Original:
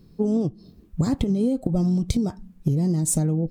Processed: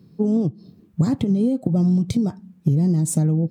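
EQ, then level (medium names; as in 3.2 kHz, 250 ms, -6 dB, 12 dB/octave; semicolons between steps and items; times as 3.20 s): high-pass 110 Hz 24 dB/octave; tone controls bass +5 dB, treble -3 dB; 0.0 dB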